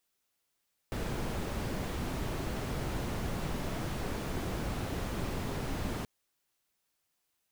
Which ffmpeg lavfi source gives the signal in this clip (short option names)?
-f lavfi -i "anoisesrc=c=brown:a=0.0881:d=5.13:r=44100:seed=1"